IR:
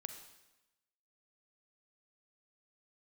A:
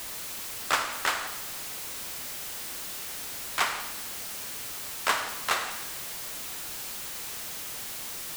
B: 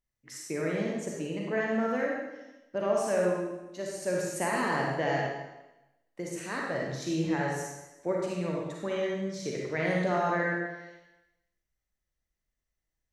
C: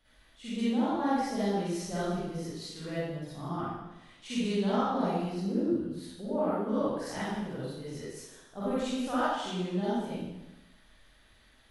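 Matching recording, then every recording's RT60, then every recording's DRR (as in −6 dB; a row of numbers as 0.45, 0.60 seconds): A; 1.0, 1.0, 1.0 seconds; 7.0, −2.5, −11.5 decibels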